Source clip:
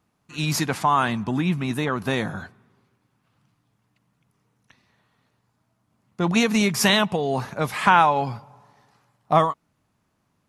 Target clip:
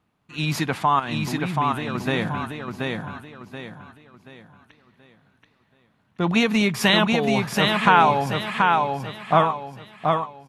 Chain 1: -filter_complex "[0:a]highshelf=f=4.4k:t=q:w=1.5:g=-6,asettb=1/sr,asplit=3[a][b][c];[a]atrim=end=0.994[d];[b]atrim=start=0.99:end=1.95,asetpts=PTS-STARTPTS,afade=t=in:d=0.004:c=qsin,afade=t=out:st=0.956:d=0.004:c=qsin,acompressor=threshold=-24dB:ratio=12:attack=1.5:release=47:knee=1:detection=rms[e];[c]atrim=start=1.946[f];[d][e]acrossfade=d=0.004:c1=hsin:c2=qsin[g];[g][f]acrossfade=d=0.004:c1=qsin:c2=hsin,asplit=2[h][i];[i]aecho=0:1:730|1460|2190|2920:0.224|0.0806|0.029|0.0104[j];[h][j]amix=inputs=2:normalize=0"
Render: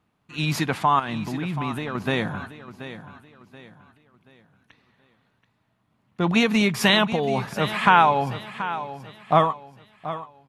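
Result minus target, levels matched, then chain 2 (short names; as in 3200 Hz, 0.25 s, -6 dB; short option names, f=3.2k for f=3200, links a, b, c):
echo-to-direct -9.5 dB
-filter_complex "[0:a]highshelf=f=4.4k:t=q:w=1.5:g=-6,asettb=1/sr,asplit=3[a][b][c];[a]atrim=end=0.994[d];[b]atrim=start=0.99:end=1.95,asetpts=PTS-STARTPTS,afade=t=in:d=0.004:c=qsin,afade=t=out:st=0.956:d=0.004:c=qsin,acompressor=threshold=-24dB:ratio=12:attack=1.5:release=47:knee=1:detection=rms[e];[c]atrim=start=1.946[f];[d][e]acrossfade=d=0.004:c1=hsin:c2=qsin[g];[g][f]acrossfade=d=0.004:c1=qsin:c2=hsin,asplit=2[h][i];[i]aecho=0:1:730|1460|2190|2920|3650:0.668|0.241|0.0866|0.0312|0.0112[j];[h][j]amix=inputs=2:normalize=0"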